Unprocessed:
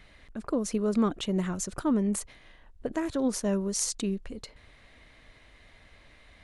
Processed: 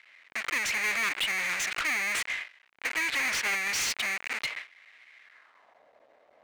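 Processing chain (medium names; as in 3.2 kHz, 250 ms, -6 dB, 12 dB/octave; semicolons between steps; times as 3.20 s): square wave that keeps the level; gate with hold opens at -41 dBFS; band-pass sweep 2.2 kHz -> 600 Hz, 5.22–5.85 s; overdrive pedal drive 33 dB, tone 7 kHz, clips at -20.5 dBFS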